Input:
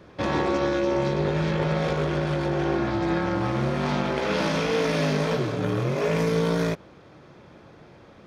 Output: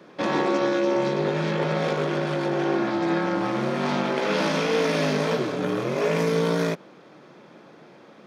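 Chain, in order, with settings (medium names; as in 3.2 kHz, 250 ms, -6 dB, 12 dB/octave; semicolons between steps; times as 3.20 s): high-pass 170 Hz 24 dB/octave; trim +1.5 dB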